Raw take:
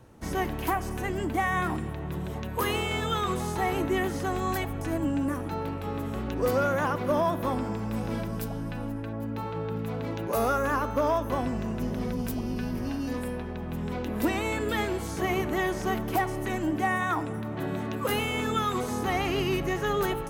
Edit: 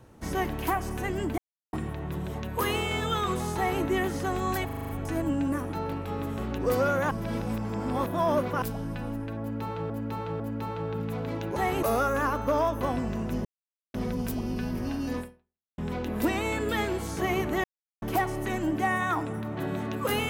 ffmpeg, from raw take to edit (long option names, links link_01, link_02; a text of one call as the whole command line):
ffmpeg -i in.wav -filter_complex "[0:a]asplit=19[link_01][link_02][link_03][link_04][link_05][link_06][link_07][link_08][link_09][link_10][link_11][link_12][link_13][link_14][link_15][link_16][link_17][link_18][link_19];[link_01]atrim=end=1.38,asetpts=PTS-STARTPTS,afade=type=out:start_time=1.376:duration=0.004:curve=hsin[link_20];[link_02]atrim=start=1.38:end=1.73,asetpts=PTS-STARTPTS,volume=0[link_21];[link_03]atrim=start=1.73:end=4.692,asetpts=PTS-STARTPTS,afade=type=in:duration=0.004:curve=hsin[link_22];[link_04]atrim=start=4.648:end=4.692[link_23];[link_05]atrim=start=4.648:end=4.692[link_24];[link_06]atrim=start=4.648:end=4.692[link_25];[link_07]atrim=start=4.648:end=4.692[link_26];[link_08]atrim=start=4.648:end=4.692[link_27];[link_09]atrim=start=4.648:end=6.872[link_28];[link_10]atrim=start=6.868:end=8.382,asetpts=PTS-STARTPTS,areverse[link_29];[link_11]atrim=start=8.378:end=9.662[link_30];[link_12]atrim=start=9.158:end=9.662[link_31];[link_13]atrim=start=9.158:end=10.322[link_32];[link_14]atrim=start=3.558:end=3.832[link_33];[link_15]atrim=start=10.318:end=11.94,asetpts=PTS-STARTPTS,afade=type=out:start_time=1.618:duration=0.004:curve=hsin,apad=pad_dur=0.49[link_34];[link_16]atrim=start=11.94:end=13.78,asetpts=PTS-STARTPTS,afade=type=in:duration=0.004:curve=hsin,afade=type=out:start_time=1.26:duration=0.58:curve=exp[link_35];[link_17]atrim=start=13.78:end=15.64,asetpts=PTS-STARTPTS,afade=type=in:duration=0.004:curve=hsin,afade=type=out:start_time=1.856:duration=0.004:curve=hsin[link_36];[link_18]atrim=start=15.64:end=16.02,asetpts=PTS-STARTPTS,volume=0[link_37];[link_19]atrim=start=16.02,asetpts=PTS-STARTPTS,afade=type=in:duration=0.004:curve=hsin[link_38];[link_20][link_21][link_22]concat=n=3:v=0:a=1[link_39];[link_39][link_23]acrossfade=duration=0.004:curve1=hsin:curve2=hsin[link_40];[link_40][link_24]acrossfade=duration=0.004:curve1=hsin:curve2=hsin[link_41];[link_41][link_25]acrossfade=duration=0.004:curve1=hsin:curve2=hsin[link_42];[link_42][link_26]acrossfade=duration=0.004:curve1=hsin:curve2=hsin[link_43];[link_43][link_27]acrossfade=duration=0.004:curve1=hsin:curve2=hsin[link_44];[link_44][link_28]acrossfade=duration=0.004:curve1=hsin:curve2=hsin[link_45];[link_45][link_29]acrossfade=duration=0.004:curve1=hsin:curve2=hsin[link_46];[link_46][link_30]acrossfade=duration=0.004:curve1=hsin:curve2=hsin[link_47];[link_47][link_31]acrossfade=duration=0.004:curve1=hsin:curve2=hsin[link_48];[link_48][link_32]acrossfade=duration=0.004:curve1=hsin:curve2=hsin[link_49];[link_49][link_33]acrossfade=duration=0.004:curve1=hsin:curve2=hsin[link_50];[link_34][link_35][link_36][link_37][link_38]concat=n=5:v=0:a=1[link_51];[link_50][link_51]acrossfade=duration=0.004:curve1=hsin:curve2=hsin" out.wav